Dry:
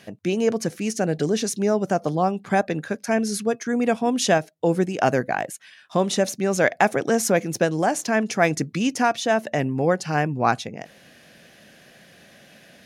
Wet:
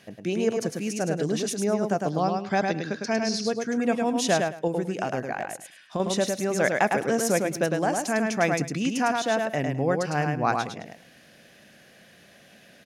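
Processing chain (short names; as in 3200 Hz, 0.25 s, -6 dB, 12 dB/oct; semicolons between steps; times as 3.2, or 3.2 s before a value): 2.1–3.46 synth low-pass 5000 Hz, resonance Q 3; 4.67–6 compressor, threshold -21 dBFS, peak gain reduction 7.5 dB; feedback echo 0.105 s, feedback 18%, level -4 dB; gain -4.5 dB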